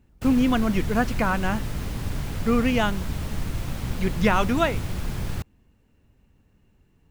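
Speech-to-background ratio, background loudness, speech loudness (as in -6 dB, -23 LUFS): 7.5 dB, -31.5 LUFS, -24.0 LUFS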